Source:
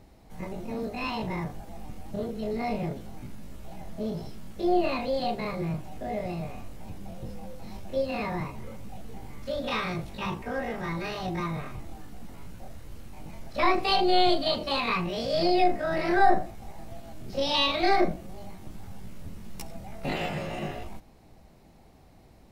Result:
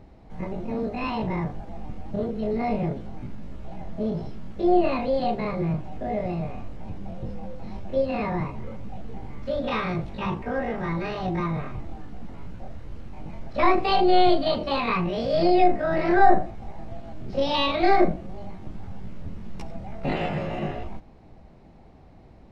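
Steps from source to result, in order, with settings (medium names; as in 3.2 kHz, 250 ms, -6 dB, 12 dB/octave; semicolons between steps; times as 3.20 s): tape spacing loss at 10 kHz 22 dB; trim +5.5 dB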